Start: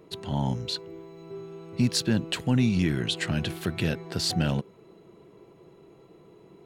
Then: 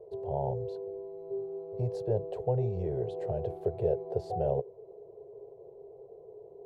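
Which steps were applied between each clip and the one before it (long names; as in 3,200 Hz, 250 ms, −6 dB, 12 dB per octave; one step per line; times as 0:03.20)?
drawn EQ curve 120 Hz 0 dB, 280 Hz −28 dB, 410 Hz +13 dB, 730 Hz +8 dB, 1,300 Hz −22 dB, 2,900 Hz −28 dB
level −4 dB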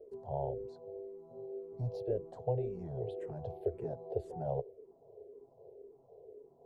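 amplitude modulation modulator 150 Hz, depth 15%
frequency shifter mixed with the dry sound −1.9 Hz
level −2 dB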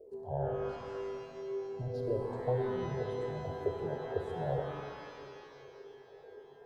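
reverb with rising layers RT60 2.2 s, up +12 semitones, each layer −8 dB, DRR 2.5 dB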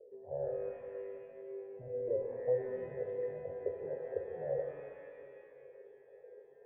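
formant resonators in series e
level +5.5 dB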